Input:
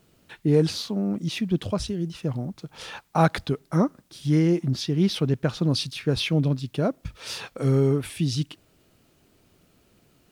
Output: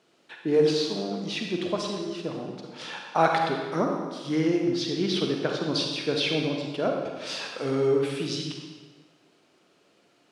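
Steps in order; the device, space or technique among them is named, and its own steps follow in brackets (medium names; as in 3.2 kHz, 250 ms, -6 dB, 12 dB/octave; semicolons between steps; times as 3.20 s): supermarket ceiling speaker (band-pass 340–6000 Hz; reverberation RT60 1.4 s, pre-delay 38 ms, DRR 1.5 dB)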